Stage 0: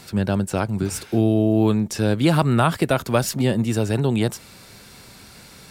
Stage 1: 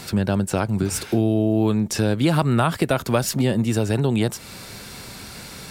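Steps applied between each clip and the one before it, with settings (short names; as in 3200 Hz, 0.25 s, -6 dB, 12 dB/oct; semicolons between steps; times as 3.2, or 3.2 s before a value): compressor 2:1, threshold -29 dBFS, peak gain reduction 9 dB; gain +7 dB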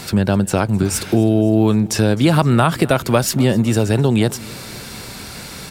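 feedback echo 0.258 s, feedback 60%, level -22 dB; gain +5 dB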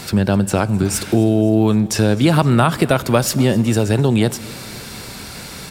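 Schroeder reverb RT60 1.7 s, combs from 30 ms, DRR 18 dB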